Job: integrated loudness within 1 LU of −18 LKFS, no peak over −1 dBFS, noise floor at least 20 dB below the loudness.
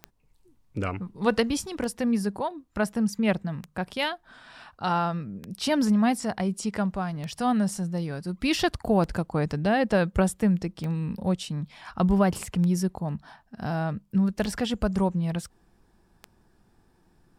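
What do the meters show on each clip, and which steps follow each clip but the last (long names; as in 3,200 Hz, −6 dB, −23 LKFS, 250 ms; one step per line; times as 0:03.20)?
number of clicks 10; integrated loudness −27.0 LKFS; sample peak −8.5 dBFS; target loudness −18.0 LKFS
→ click removal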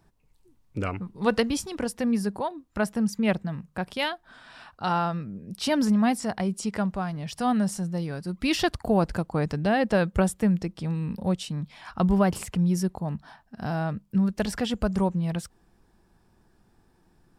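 number of clicks 0; integrated loudness −27.0 LKFS; sample peak −8.5 dBFS; target loudness −18.0 LKFS
→ level +9 dB
brickwall limiter −1 dBFS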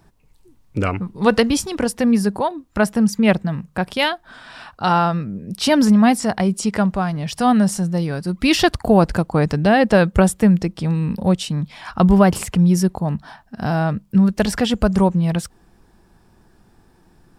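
integrated loudness −18.0 LKFS; sample peak −1.0 dBFS; background noise floor −55 dBFS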